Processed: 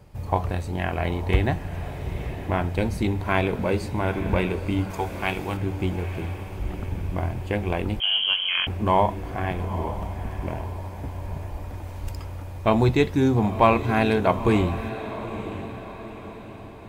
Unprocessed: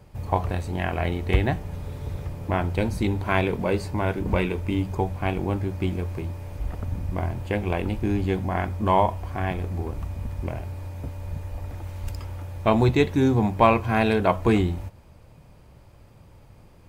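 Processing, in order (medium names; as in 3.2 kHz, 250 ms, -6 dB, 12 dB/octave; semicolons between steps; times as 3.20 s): 4.90–5.57 s: tilt shelf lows -8 dB, about 800 Hz; echo that smears into a reverb 911 ms, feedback 48%, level -11.5 dB; 8.00–8.67 s: frequency inversion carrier 3.2 kHz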